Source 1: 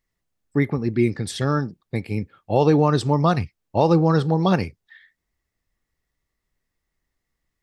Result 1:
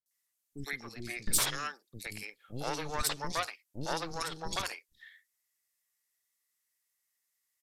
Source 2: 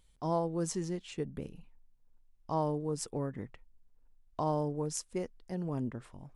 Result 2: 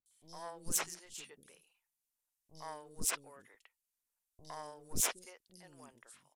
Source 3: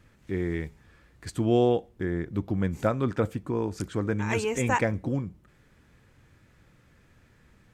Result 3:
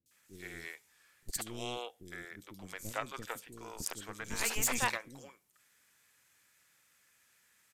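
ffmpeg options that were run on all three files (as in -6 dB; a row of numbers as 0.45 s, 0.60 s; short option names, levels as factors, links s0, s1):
-filter_complex "[0:a]acompressor=threshold=0.0794:ratio=1.5,aderivative,aeval=exprs='0.133*(cos(1*acos(clip(val(0)/0.133,-1,1)))-cos(1*PI/2))+0.0335*(cos(8*acos(clip(val(0)/0.133,-1,1)))-cos(8*PI/2))':c=same,acrossover=split=380|3900[s0][s1][s2];[s2]adelay=60[s3];[s1]adelay=110[s4];[s0][s4][s3]amix=inputs=3:normalize=0,aresample=32000,aresample=44100,volume=2.11"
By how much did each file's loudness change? -14.0 LU, -2.5 LU, -10.0 LU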